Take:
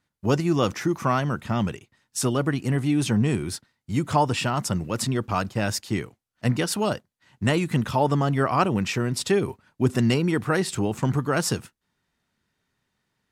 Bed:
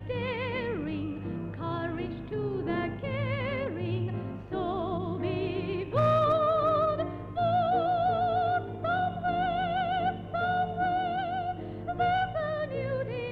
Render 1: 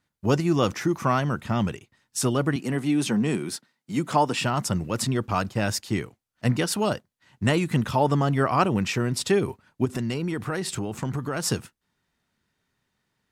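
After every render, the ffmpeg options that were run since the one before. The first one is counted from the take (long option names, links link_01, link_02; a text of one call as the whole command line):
ffmpeg -i in.wav -filter_complex "[0:a]asettb=1/sr,asplit=3[link_01][link_02][link_03];[link_01]atrim=end=2.564[link_04];[link_02]atrim=start=2.56:end=4.41,asetpts=PTS-STARTPTS,afade=type=in:duration=0.004:curve=qsin,afade=type=out:start_time=1.846:duration=0.004:curve=qsin,highpass=frequency=160:width=0.5412,highpass=frequency=160:width=1.3066[link_05];[link_03]atrim=start=4.406[link_06];[link_04][link_05]acrossfade=duration=0.004:curve1=hsin:curve2=qsin[link_07];[link_07][link_06]acrossfade=duration=0.004:curve1=qsin:curve2=hsin,asplit=3[link_08][link_09][link_10];[link_08]afade=type=out:start_time=9.84:duration=0.02[link_11];[link_09]acompressor=threshold=-24dB:ratio=6:attack=3.2:release=140:knee=1:detection=peak,afade=type=in:start_time=9.84:duration=0.02,afade=type=out:start_time=11.43:duration=0.02[link_12];[link_10]afade=type=in:start_time=11.43:duration=0.02[link_13];[link_11][link_12][link_13]amix=inputs=3:normalize=0" out.wav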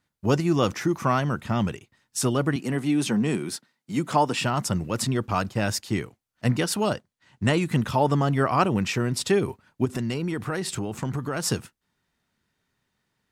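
ffmpeg -i in.wav -filter_complex "[0:a]asettb=1/sr,asplit=3[link_01][link_02][link_03];[link_01]atrim=end=6.924[link_04];[link_02]atrim=start=6.92:end=7.62,asetpts=PTS-STARTPTS,afade=type=in:duration=0.004:curve=qsin,afade=type=out:start_time=0.696:duration=0.004:curve=qsin,equalizer=frequency=13000:width=2.9:gain=-13.5[link_05];[link_03]atrim=start=7.616[link_06];[link_04][link_05]acrossfade=duration=0.004:curve1=hsin:curve2=qsin[link_07];[link_07][link_06]acrossfade=duration=0.004:curve1=qsin:curve2=hsin" out.wav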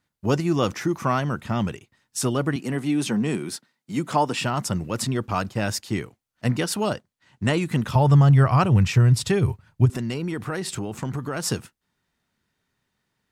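ffmpeg -i in.wav -filter_complex "[0:a]asettb=1/sr,asplit=3[link_01][link_02][link_03];[link_01]atrim=end=7.954[link_04];[link_02]atrim=start=7.95:end=9.9,asetpts=PTS-STARTPTS,afade=type=in:duration=0.004:curve=qsin,afade=type=out:start_time=1.946:duration=0.004:curve=qsin,lowshelf=frequency=170:width_type=q:width=1.5:gain=11.5[link_05];[link_03]atrim=start=9.896[link_06];[link_04][link_05]acrossfade=duration=0.004:curve1=hsin:curve2=qsin[link_07];[link_07][link_06]acrossfade=duration=0.004:curve1=qsin:curve2=hsin" out.wav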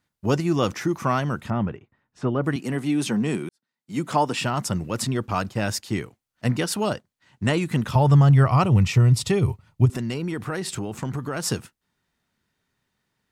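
ffmpeg -i in.wav -filter_complex "[0:a]asettb=1/sr,asplit=3[link_01][link_02][link_03];[link_01]atrim=end=1.504[link_04];[link_02]atrim=start=1.5:end=2.44,asetpts=PTS-STARTPTS,afade=type=in:duration=0.004:curve=qsin,afade=type=out:start_time=0.936:duration=0.004:curve=qsin,lowpass=1600[link_05];[link_03]atrim=start=2.436[link_06];[link_04][link_05]acrossfade=duration=0.004:curve1=hsin:curve2=qsin[link_07];[link_07][link_06]acrossfade=duration=0.004:curve1=qsin:curve2=hsin,asettb=1/sr,asplit=3[link_08][link_09][link_10];[link_08]atrim=end=8.454[link_11];[link_09]atrim=start=8.45:end=9.92,asetpts=PTS-STARTPTS,afade=type=in:duration=0.004:curve=qsin,afade=type=out:start_time=1.466:duration=0.004:curve=qsin,bandreject=frequency=1600:width=5.2[link_12];[link_10]atrim=start=9.916[link_13];[link_11][link_12]acrossfade=duration=0.004:curve1=hsin:curve2=qsin[link_14];[link_14][link_13]acrossfade=duration=0.004:curve1=qsin:curve2=hsin,asplit=2[link_15][link_16];[link_15]atrim=end=3.49,asetpts=PTS-STARTPTS,afade=type=out:start_time=3.486:duration=0.004:curve=hsin[link_17];[link_16]atrim=start=3.49,asetpts=PTS-STARTPTS,afade=type=in:duration=0.52:curve=qua[link_18];[link_17][link_18]concat=n=2:v=0:a=1" out.wav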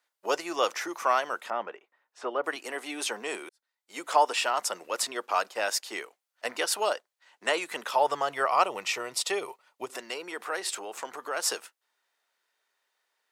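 ffmpeg -i in.wav -af "highpass=frequency=490:width=0.5412,highpass=frequency=490:width=1.3066" out.wav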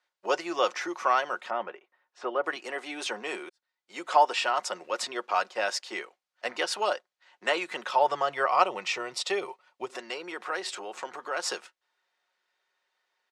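ffmpeg -i in.wav -af "lowpass=5500,aecho=1:1:5.5:0.36" out.wav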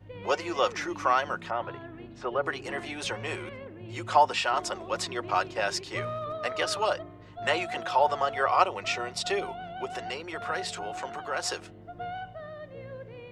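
ffmpeg -i in.wav -i bed.wav -filter_complex "[1:a]volume=-10.5dB[link_01];[0:a][link_01]amix=inputs=2:normalize=0" out.wav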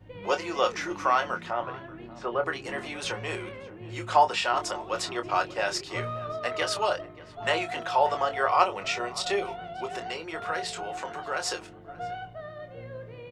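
ffmpeg -i in.wav -filter_complex "[0:a]asplit=2[link_01][link_02];[link_02]adelay=25,volume=-8dB[link_03];[link_01][link_03]amix=inputs=2:normalize=0,asplit=2[link_04][link_05];[link_05]adelay=583.1,volume=-19dB,highshelf=frequency=4000:gain=-13.1[link_06];[link_04][link_06]amix=inputs=2:normalize=0" out.wav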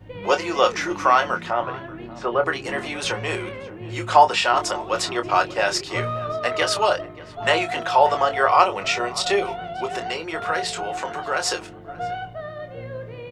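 ffmpeg -i in.wav -af "volume=7dB,alimiter=limit=-1dB:level=0:latency=1" out.wav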